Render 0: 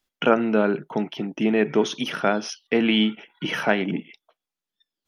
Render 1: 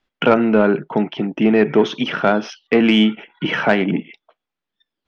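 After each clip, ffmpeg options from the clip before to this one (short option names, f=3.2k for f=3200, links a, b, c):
-af "lowpass=3k,acontrast=89"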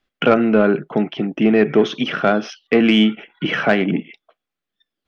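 -af "bandreject=f=920:w=5.7"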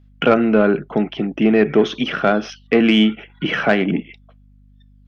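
-af "aeval=exprs='val(0)+0.00398*(sin(2*PI*50*n/s)+sin(2*PI*2*50*n/s)/2+sin(2*PI*3*50*n/s)/3+sin(2*PI*4*50*n/s)/4+sin(2*PI*5*50*n/s)/5)':c=same"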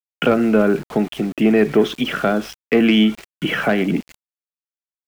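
-filter_complex "[0:a]acrossover=split=440[a][b];[b]acompressor=threshold=-16dB:ratio=6[c];[a][c]amix=inputs=2:normalize=0,aeval=exprs='val(0)*gte(abs(val(0)),0.0211)':c=same"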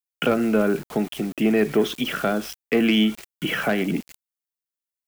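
-af "crystalizer=i=1.5:c=0,volume=-5dB"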